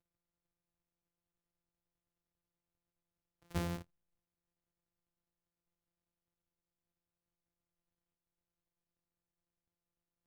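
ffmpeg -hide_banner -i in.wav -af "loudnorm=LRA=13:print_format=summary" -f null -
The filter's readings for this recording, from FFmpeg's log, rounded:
Input Integrated:    -41.3 LUFS
Input True Peak:     -24.0 dBTP
Input LRA:             0.0 LU
Input Threshold:     -52.0 LUFS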